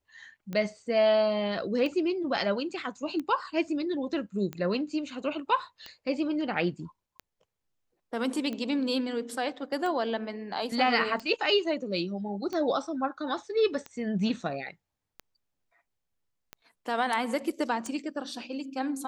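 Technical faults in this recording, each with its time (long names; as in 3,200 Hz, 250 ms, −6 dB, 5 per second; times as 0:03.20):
scratch tick 45 rpm −23 dBFS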